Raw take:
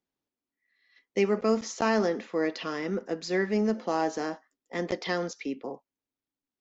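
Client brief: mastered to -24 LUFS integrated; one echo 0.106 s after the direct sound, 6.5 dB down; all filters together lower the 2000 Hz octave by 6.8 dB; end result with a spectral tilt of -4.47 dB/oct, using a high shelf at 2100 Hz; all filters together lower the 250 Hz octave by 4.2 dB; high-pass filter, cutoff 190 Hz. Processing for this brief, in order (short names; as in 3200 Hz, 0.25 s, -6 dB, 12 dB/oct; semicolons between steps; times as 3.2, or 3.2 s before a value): HPF 190 Hz; bell 250 Hz -3.5 dB; bell 2000 Hz -5 dB; high shelf 2100 Hz -6 dB; echo 0.106 s -6.5 dB; gain +7.5 dB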